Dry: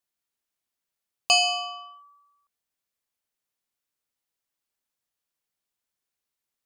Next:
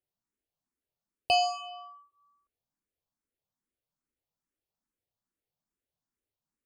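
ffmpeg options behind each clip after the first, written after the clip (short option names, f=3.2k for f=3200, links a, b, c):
-filter_complex "[0:a]tiltshelf=f=840:g=8.5,asplit=2[a][b];[b]afreqshift=2.4[c];[a][c]amix=inputs=2:normalize=1"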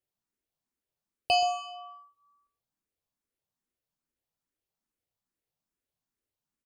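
-af "aecho=1:1:126:0.224"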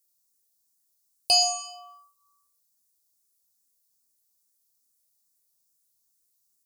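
-af "aexciter=amount=11.4:drive=3.1:freq=4.2k,volume=-2.5dB"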